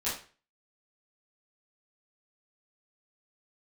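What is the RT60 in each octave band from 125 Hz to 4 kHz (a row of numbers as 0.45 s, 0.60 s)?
0.45 s, 0.35 s, 0.40 s, 0.40 s, 0.40 s, 0.35 s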